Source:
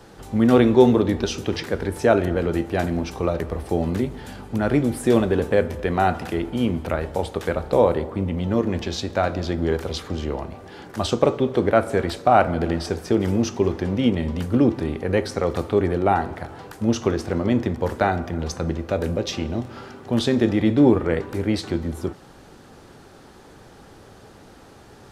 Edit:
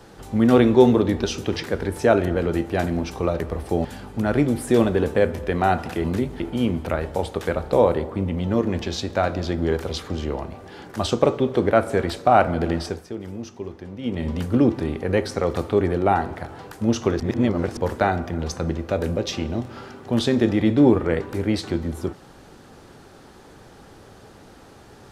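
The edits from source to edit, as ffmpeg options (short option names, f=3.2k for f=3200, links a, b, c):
-filter_complex "[0:a]asplit=8[a][b][c][d][e][f][g][h];[a]atrim=end=3.852[i];[b]atrim=start=4.208:end=6.402[j];[c]atrim=start=3.848:end=4.212[k];[d]atrim=start=6.398:end=13.08,asetpts=PTS-STARTPTS,afade=t=out:st=6.402:d=0.28:silence=0.237137[l];[e]atrim=start=13.08:end=14.01,asetpts=PTS-STARTPTS,volume=-12.5dB[m];[f]atrim=start=14.01:end=17.202,asetpts=PTS-STARTPTS,afade=t=in:d=0.28:silence=0.237137[n];[g]atrim=start=17.198:end=17.772,asetpts=PTS-STARTPTS,areverse[o];[h]atrim=start=17.768[p];[i][j]acrossfade=d=0.004:c1=hsin:c2=hsin[q];[q][k]acrossfade=d=0.004:c1=hsin:c2=hsin[r];[l][m][n]concat=n=3:v=0:a=1[s];[r][s]acrossfade=d=0.004:c1=hsin:c2=hsin[t];[t][o]acrossfade=d=0.004:c1=hsin:c2=hsin[u];[u][p]acrossfade=d=0.004:c1=hsin:c2=hsin"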